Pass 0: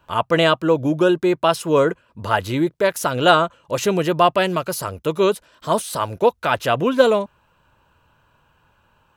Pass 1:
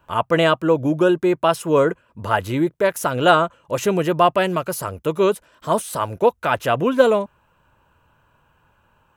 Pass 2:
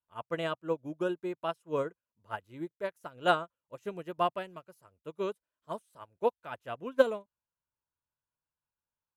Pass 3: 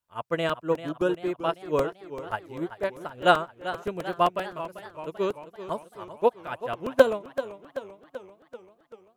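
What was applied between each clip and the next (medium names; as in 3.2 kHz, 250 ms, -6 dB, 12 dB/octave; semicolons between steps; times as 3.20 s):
peaking EQ 4.3 kHz -6.5 dB 0.96 oct
upward expansion 2.5:1, over -29 dBFS; trim -8 dB
crackling interface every 0.13 s, samples 128, repeat, from 0.49 s; modulated delay 388 ms, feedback 59%, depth 106 cents, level -13 dB; trim +6.5 dB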